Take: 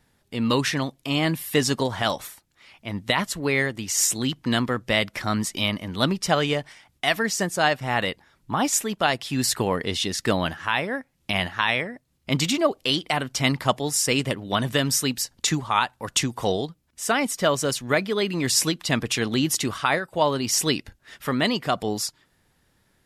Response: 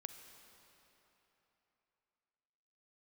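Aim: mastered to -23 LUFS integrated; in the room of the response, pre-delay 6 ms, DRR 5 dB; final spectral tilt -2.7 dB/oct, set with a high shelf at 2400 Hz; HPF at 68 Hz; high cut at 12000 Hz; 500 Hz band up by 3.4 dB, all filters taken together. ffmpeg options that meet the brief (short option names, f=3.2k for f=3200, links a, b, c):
-filter_complex "[0:a]highpass=68,lowpass=12k,equalizer=f=500:t=o:g=4,highshelf=f=2.4k:g=5,asplit=2[a][b];[1:a]atrim=start_sample=2205,adelay=6[c];[b][c]afir=irnorm=-1:irlink=0,volume=-1dB[d];[a][d]amix=inputs=2:normalize=0,volume=-3dB"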